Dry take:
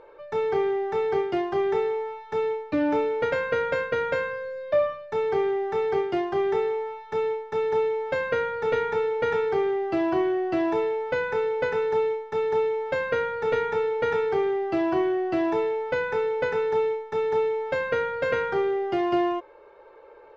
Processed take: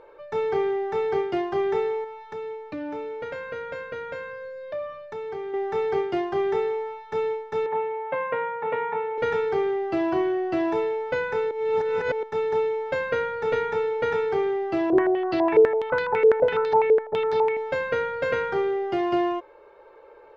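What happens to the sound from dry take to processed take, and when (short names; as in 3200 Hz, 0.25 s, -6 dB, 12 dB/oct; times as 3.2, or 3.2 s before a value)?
2.04–5.54 compressor 2:1, threshold -37 dBFS
7.66–9.18 speaker cabinet 190–2600 Hz, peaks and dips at 230 Hz -4 dB, 390 Hz -9 dB, 1000 Hz +8 dB, 1500 Hz -6 dB
11.51–12.23 reverse
14.9–17.57 stepped low-pass 12 Hz 460–4400 Hz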